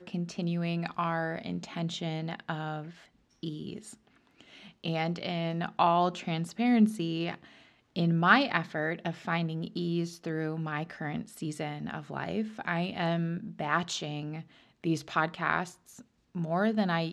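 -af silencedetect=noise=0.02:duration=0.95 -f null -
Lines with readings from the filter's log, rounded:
silence_start: 3.78
silence_end: 4.84 | silence_duration: 1.06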